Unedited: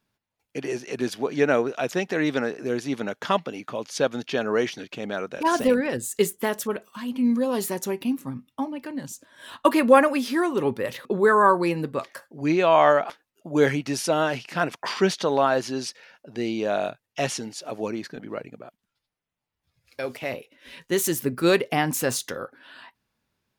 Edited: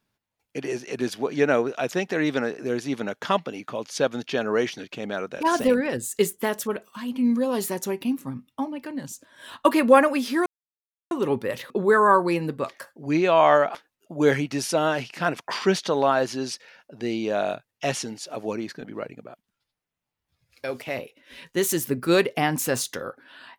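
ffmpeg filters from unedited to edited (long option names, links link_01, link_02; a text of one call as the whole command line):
ffmpeg -i in.wav -filter_complex "[0:a]asplit=2[link_01][link_02];[link_01]atrim=end=10.46,asetpts=PTS-STARTPTS,afade=type=out:start_time=10.456:duration=0.004:curve=hsin,apad=pad_dur=0.65[link_03];[link_02]atrim=start=10.46,asetpts=PTS-STARTPTS,afade=type=in:duration=0.004:curve=hsin[link_04];[link_03][link_04]concat=n=2:v=0:a=1" out.wav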